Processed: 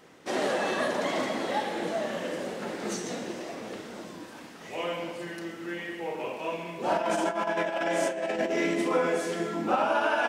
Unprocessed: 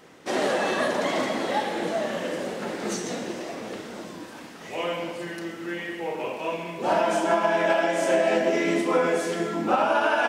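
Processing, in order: 6.97–8.91 s: compressor with a negative ratio -24 dBFS, ratio -0.5; trim -3.5 dB

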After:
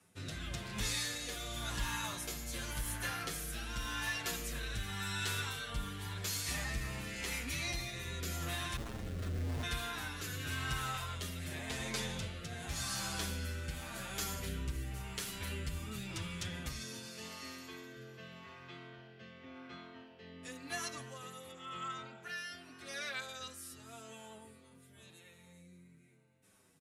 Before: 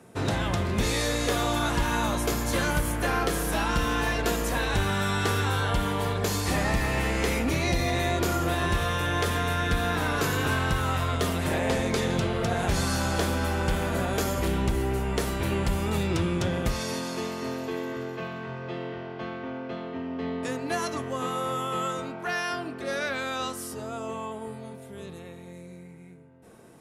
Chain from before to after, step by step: amplifier tone stack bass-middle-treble 5-5-5; 8.76–9.63 s: Schmitt trigger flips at -34.5 dBFS; on a send: frequency-shifting echo 292 ms, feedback 49%, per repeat +48 Hz, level -19 dB; on the sum: rotary cabinet horn 0.9 Hz; 21.51–22.23 s: distance through air 110 m; endless flanger 7.5 ms -0.98 Hz; trim +5 dB

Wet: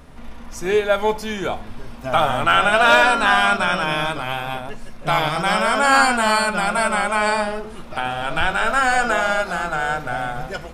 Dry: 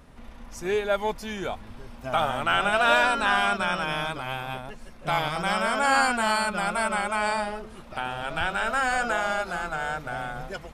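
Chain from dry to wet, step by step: on a send at -10 dB: reverberation RT60 0.45 s, pre-delay 3 ms; on the sum: overload inside the chain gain 9.5 dB; trim +6.5 dB

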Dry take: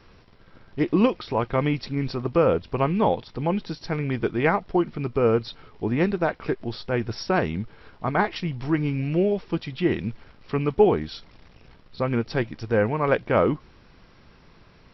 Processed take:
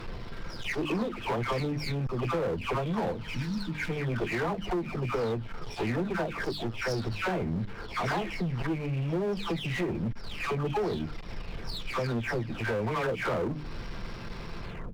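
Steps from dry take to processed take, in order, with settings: delay that grows with frequency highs early, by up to 439 ms; power-law waveshaper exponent 0.7; bass shelf 78 Hz +8.5 dB; hum notches 50/100/150/200/250/300 Hz; compression 4:1, threshold -28 dBFS, peak gain reduction 14 dB; one-sided clip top -28.5 dBFS; spectral replace 3.27–3.87 s, 340–1400 Hz before

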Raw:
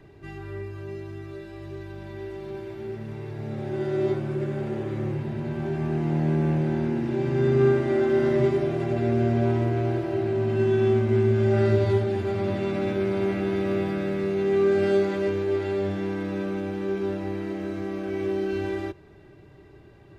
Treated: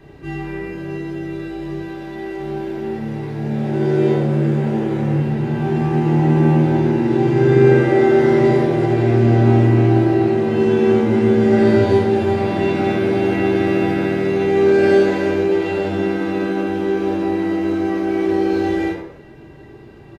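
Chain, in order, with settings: 1.80–2.40 s: peaking EQ 83 Hz -10 dB 2.4 oct; frequency-shifting echo 87 ms, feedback 34%, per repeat +84 Hz, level -12.5 dB; reverberation RT60 0.50 s, pre-delay 7 ms, DRR -3 dB; trim +4.5 dB

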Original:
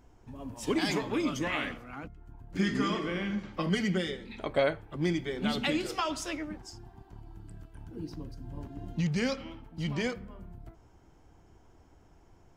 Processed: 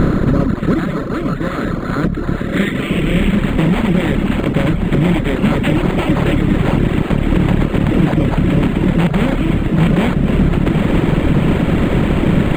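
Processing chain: spectral levelling over time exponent 0.2; gain riding 0.5 s; reverb removal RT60 1.7 s; echo that smears into a reverb 940 ms, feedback 74%, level -9 dB; reverb removal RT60 0.54 s; 0.82–2.91 s: bass shelf 320 Hz -7 dB; low-pass sweep 1.4 kHz -> 5.6 kHz, 2.26–3.73 s; amplifier tone stack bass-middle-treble 10-0-1; loudness maximiser +34.5 dB; decimation joined by straight lines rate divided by 8×; trim -2 dB

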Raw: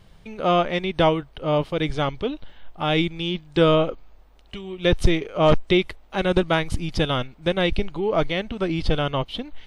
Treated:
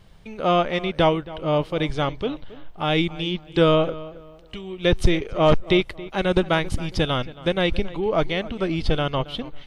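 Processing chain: filtered feedback delay 274 ms, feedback 31%, low-pass 2.7 kHz, level -17.5 dB

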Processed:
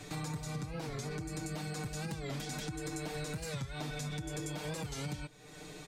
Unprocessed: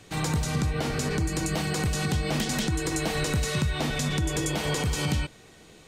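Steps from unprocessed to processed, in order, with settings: band-stop 3 kHz, Q 13; comb 6.7 ms, depth 86%; compression 3:1, threshold -45 dBFS, peak gain reduction 19.5 dB; warped record 45 rpm, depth 160 cents; trim +1.5 dB

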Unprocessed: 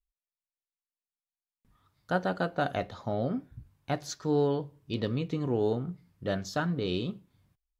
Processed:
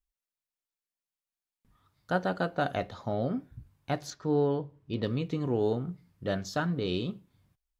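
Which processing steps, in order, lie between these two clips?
4.10–5.03 s: low-pass 2.1 kHz 6 dB/octave

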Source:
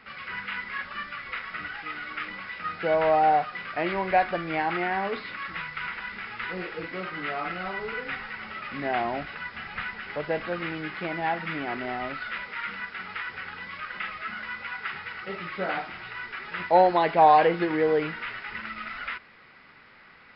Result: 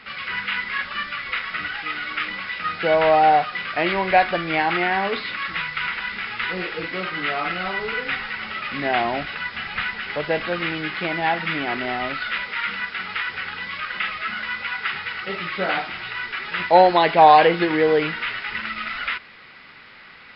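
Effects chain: peaking EQ 3.6 kHz +7.5 dB 1.4 oct; trim +5 dB

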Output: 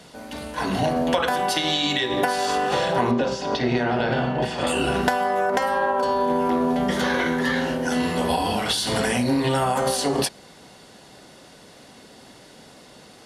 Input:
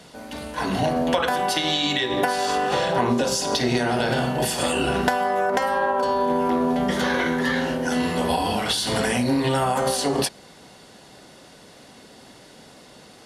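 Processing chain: 3.11–4.67 s: low-pass 3.1 kHz 12 dB/octave

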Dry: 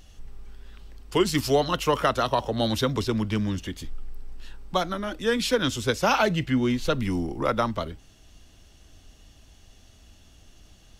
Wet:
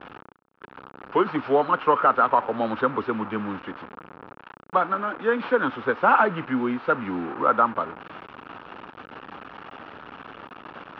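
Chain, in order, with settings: one-bit delta coder 32 kbps, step -30 dBFS; gate with hold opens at -33 dBFS; cabinet simulation 310–2100 Hz, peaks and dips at 360 Hz -3 dB, 640 Hz -5 dB, 910 Hz +3 dB, 1.3 kHz +7 dB, 2 kHz -8 dB; trim +4 dB

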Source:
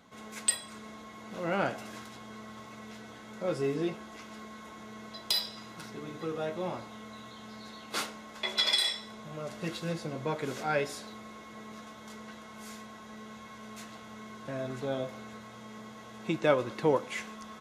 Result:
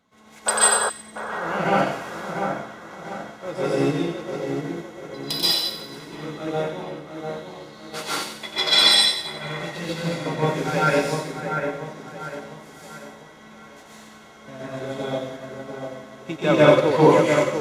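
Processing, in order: 6.54–6.95 s: level held to a coarse grid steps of 17 dB; in parallel at -9 dB: crossover distortion -50 dBFS; on the sum: plate-style reverb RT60 0.93 s, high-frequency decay 0.75×, pre-delay 115 ms, DRR -7 dB; 0.46–0.90 s: painted sound noise 390–1700 Hz -23 dBFS; two-band feedback delay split 2.3 kHz, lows 695 ms, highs 91 ms, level -4 dB; upward expansion 1.5:1, over -36 dBFS; trim +3.5 dB

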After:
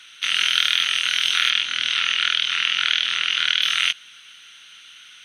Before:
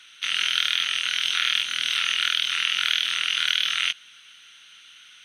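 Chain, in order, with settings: 1.50–3.62 s: distance through air 71 m; trim +4 dB

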